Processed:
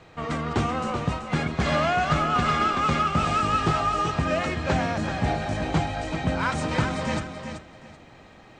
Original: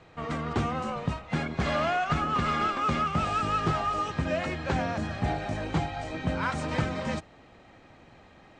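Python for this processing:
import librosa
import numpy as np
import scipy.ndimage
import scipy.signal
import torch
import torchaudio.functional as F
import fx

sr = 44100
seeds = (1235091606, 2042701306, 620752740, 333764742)

y = fx.high_shelf(x, sr, hz=5300.0, db=4.5)
y = fx.echo_feedback(y, sr, ms=382, feedback_pct=22, wet_db=-8)
y = y * librosa.db_to_amplitude(3.5)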